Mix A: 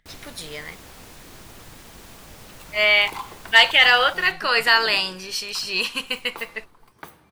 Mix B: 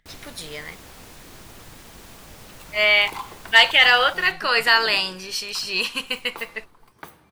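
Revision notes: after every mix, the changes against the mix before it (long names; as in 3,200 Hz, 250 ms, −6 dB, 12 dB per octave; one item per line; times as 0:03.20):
nothing changed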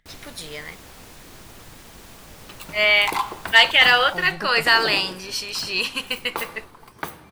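second sound +9.5 dB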